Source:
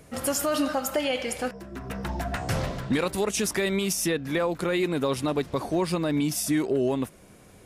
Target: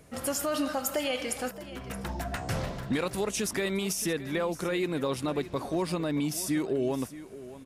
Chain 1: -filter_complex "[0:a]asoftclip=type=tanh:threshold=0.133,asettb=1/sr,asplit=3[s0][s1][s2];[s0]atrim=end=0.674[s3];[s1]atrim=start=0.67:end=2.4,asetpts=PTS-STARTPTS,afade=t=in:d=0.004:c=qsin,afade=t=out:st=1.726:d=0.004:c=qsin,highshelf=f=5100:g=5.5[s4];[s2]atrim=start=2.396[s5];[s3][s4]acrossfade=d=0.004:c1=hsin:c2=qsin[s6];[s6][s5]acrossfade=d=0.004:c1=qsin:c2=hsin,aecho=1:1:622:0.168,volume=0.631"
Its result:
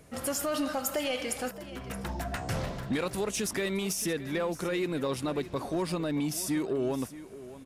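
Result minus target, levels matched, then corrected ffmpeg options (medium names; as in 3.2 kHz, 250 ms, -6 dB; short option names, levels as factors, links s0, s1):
saturation: distortion +20 dB
-filter_complex "[0:a]asoftclip=type=tanh:threshold=0.473,asettb=1/sr,asplit=3[s0][s1][s2];[s0]atrim=end=0.674[s3];[s1]atrim=start=0.67:end=2.4,asetpts=PTS-STARTPTS,afade=t=in:d=0.004:c=qsin,afade=t=out:st=1.726:d=0.004:c=qsin,highshelf=f=5100:g=5.5[s4];[s2]atrim=start=2.396[s5];[s3][s4]acrossfade=d=0.004:c1=hsin:c2=qsin[s6];[s6][s5]acrossfade=d=0.004:c1=qsin:c2=hsin,aecho=1:1:622:0.168,volume=0.631"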